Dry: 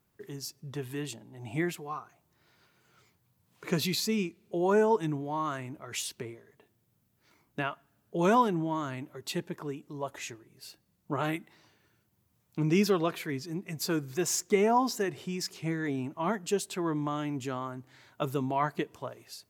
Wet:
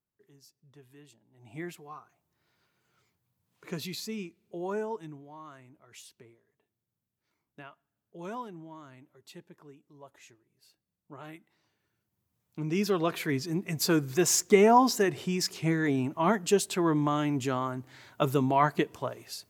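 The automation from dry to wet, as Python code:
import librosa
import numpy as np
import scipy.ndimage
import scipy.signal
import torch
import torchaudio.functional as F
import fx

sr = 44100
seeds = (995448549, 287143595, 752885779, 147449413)

y = fx.gain(x, sr, db=fx.line((1.17, -18.5), (1.66, -7.5), (4.64, -7.5), (5.35, -15.0), (11.17, -15.0), (12.74, -4.5), (13.28, 5.0)))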